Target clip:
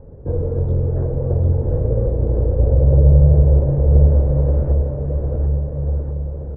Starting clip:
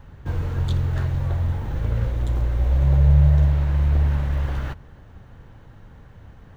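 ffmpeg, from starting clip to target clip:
ffmpeg -i in.wav -filter_complex "[0:a]lowpass=frequency=490:width_type=q:width=4.9,asplit=2[link_01][link_02];[link_02]aecho=0:1:750|1388|1929|2390|2781:0.631|0.398|0.251|0.158|0.1[link_03];[link_01][link_03]amix=inputs=2:normalize=0,volume=3dB" out.wav

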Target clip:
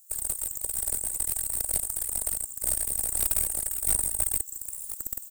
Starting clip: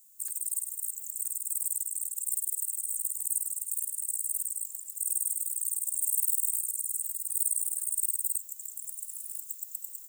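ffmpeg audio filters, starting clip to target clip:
ffmpeg -i in.wav -af "asuperstop=centerf=2200:order=4:qfactor=4.2,atempo=1.9,aeval=exprs='0.211*(cos(1*acos(clip(val(0)/0.211,-1,1)))-cos(1*PI/2))+0.0335*(cos(4*acos(clip(val(0)/0.211,-1,1)))-cos(4*PI/2))':channel_layout=same,volume=3.5dB" out.wav

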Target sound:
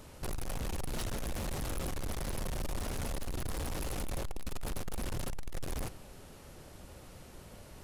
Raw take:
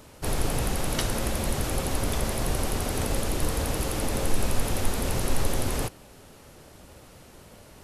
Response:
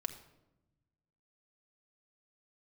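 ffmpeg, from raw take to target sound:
-filter_complex "[0:a]lowshelf=frequency=92:gain=6.5,asoftclip=type=tanh:threshold=-30dB,asplit=2[link_01][link_02];[1:a]atrim=start_sample=2205,asetrate=35721,aresample=44100[link_03];[link_02][link_03]afir=irnorm=-1:irlink=0,volume=-13.5dB[link_04];[link_01][link_04]amix=inputs=2:normalize=0,volume=-5dB"

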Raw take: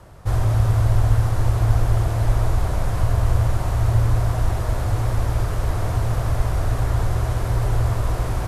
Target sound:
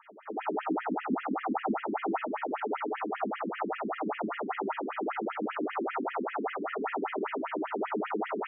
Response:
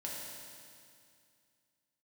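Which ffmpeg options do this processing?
-filter_complex "[0:a]aeval=exprs='0.708*sin(PI/2*2.51*val(0)/0.708)':channel_layout=same[link_01];[1:a]atrim=start_sample=2205,asetrate=61740,aresample=44100[link_02];[link_01][link_02]afir=irnorm=-1:irlink=0,afftfilt=real='re*between(b*sr/1024,260*pow(2400/260,0.5+0.5*sin(2*PI*5.1*pts/sr))/1.41,260*pow(2400/260,0.5+0.5*sin(2*PI*5.1*pts/sr))*1.41)':imag='im*between(b*sr/1024,260*pow(2400/260,0.5+0.5*sin(2*PI*5.1*pts/sr))/1.41,260*pow(2400/260,0.5+0.5*sin(2*PI*5.1*pts/sr))*1.41)':win_size=1024:overlap=0.75,volume=-3.5dB"

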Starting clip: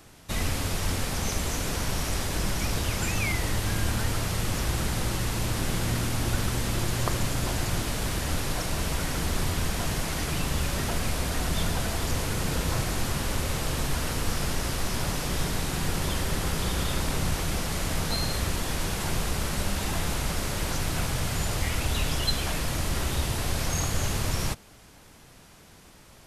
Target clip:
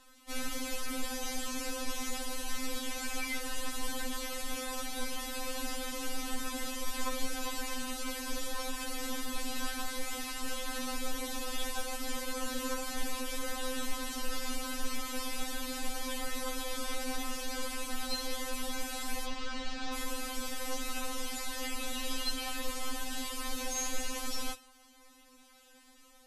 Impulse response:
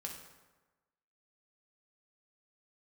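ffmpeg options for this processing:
-filter_complex "[0:a]asettb=1/sr,asplit=3[link_01][link_02][link_03];[link_01]atrim=end=19.254[link_04];[link_02]atrim=start=19.25:end=19.94,asetpts=PTS-STARTPTS,afade=type=in:duration=0.004:curve=qsin,afade=type=out:start_time=0.686:duration=0.004:curve=qsin,lowpass=frequency=5600:width=0.5412,lowpass=frequency=5600:width=1.3066[link_05];[link_03]atrim=start=19.936[link_06];[link_04][link_05]acrossfade=duration=0.004:curve1=hsin:curve2=qsin[link_07];[link_07][link_06]acrossfade=duration=0.004:curve1=qsin:curve2=hsin,asplit=2[link_08][link_09];[1:a]atrim=start_sample=2205,atrim=end_sample=6615,lowshelf=frequency=490:gain=-11.5[link_10];[link_09][link_10]afir=irnorm=-1:irlink=0,volume=-4.5dB[link_11];[link_08][link_11]amix=inputs=2:normalize=0,afftfilt=real='re*3.46*eq(mod(b,12),0)':imag='im*3.46*eq(mod(b,12),0)':win_size=2048:overlap=0.75,volume=-6.5dB"

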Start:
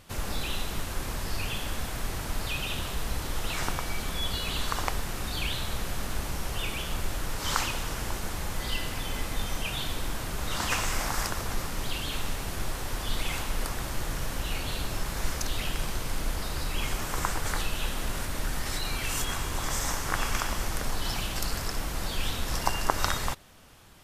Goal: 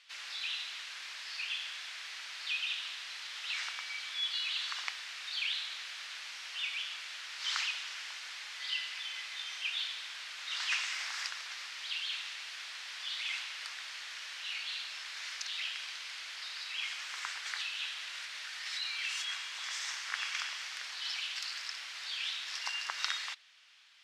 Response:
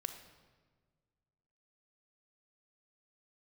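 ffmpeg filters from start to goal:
-af "asuperpass=centerf=3100:order=4:qfactor=0.93"

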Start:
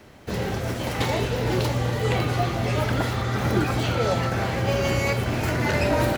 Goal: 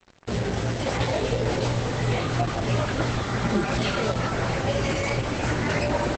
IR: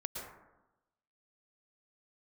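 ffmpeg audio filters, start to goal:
-filter_complex "[0:a]asplit=3[link_01][link_02][link_03];[link_01]afade=type=out:start_time=0.85:duration=0.02[link_04];[link_02]equalizer=frequency=550:width=4.4:gain=5.5,afade=type=in:start_time=0.85:duration=0.02,afade=type=out:start_time=1.74:duration=0.02[link_05];[link_03]afade=type=in:start_time=1.74:duration=0.02[link_06];[link_04][link_05][link_06]amix=inputs=3:normalize=0,acompressor=threshold=-24dB:ratio=3,flanger=delay=17:depth=3.3:speed=2.9,asettb=1/sr,asplit=3[link_07][link_08][link_09];[link_07]atrim=end=4.864[link_10];[link_08]atrim=start=4.86:end=5.43,asetpts=PTS-STARTPTS,afade=type=in:duration=0.004:curve=qsin,afade=type=out:start_time=0.566:duration=0.004:curve=qsin,lowshelf=frequency=69:gain=-5.5[link_11];[link_09]atrim=start=5.426[link_12];[link_10][link_11]acrossfade=duration=0.004:curve1=hsin:curve2=qsin[link_13];[link_13][link_12]acrossfade=duration=0.004:curve1=qsin:curve2=hsin,acrusher=bits=6:mix=0:aa=0.5,asplit=3[link_14][link_15][link_16];[link_14]afade=type=out:start_time=3.42:duration=0.02[link_17];[link_15]aecho=1:1:5:0.69,afade=type=in:start_time=3.42:duration=0.02,afade=type=out:start_time=4.06:duration=0.02[link_18];[link_16]afade=type=in:start_time=4.06:duration=0.02[link_19];[link_17][link_18][link_19]amix=inputs=3:normalize=0,asplit=2[link_20][link_21];[link_21]adelay=203,lowpass=frequency=3300:poles=1,volume=-18dB,asplit=2[link_22][link_23];[link_23]adelay=203,lowpass=frequency=3300:poles=1,volume=0.48,asplit=2[link_24][link_25];[link_25]adelay=203,lowpass=frequency=3300:poles=1,volume=0.48,asplit=2[link_26][link_27];[link_27]adelay=203,lowpass=frequency=3300:poles=1,volume=0.48[link_28];[link_20][link_22][link_24][link_26][link_28]amix=inputs=5:normalize=0,volume=5.5dB" -ar 48000 -c:a libopus -b:a 10k

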